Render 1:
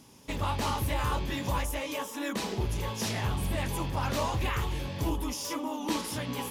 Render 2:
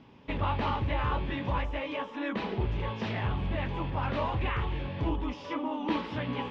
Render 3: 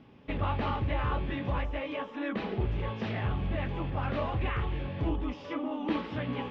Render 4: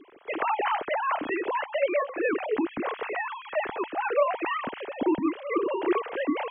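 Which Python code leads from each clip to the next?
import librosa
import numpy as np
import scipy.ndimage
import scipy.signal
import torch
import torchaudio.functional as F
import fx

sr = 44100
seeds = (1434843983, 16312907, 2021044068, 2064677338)

y1 = fx.rider(x, sr, range_db=4, speed_s=2.0)
y1 = scipy.signal.sosfilt(scipy.signal.butter(4, 3100.0, 'lowpass', fs=sr, output='sos'), y1)
y2 = fx.high_shelf(y1, sr, hz=3800.0, db=-7.5)
y2 = fx.notch(y2, sr, hz=950.0, q=6.7)
y3 = fx.sine_speech(y2, sr)
y3 = F.gain(torch.from_numpy(y3), 3.5).numpy()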